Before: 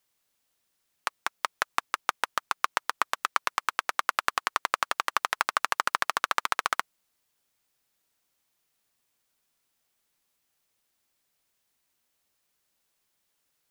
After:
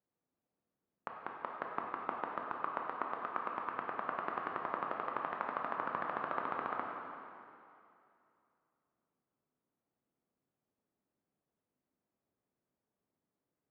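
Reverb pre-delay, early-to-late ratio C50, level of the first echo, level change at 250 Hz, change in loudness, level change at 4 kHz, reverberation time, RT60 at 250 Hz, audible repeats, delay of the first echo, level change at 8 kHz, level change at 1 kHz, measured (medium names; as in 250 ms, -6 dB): 8 ms, 1.5 dB, no echo, +3.0 dB, -10.5 dB, -26.0 dB, 2.6 s, 2.6 s, no echo, no echo, under -40 dB, -8.5 dB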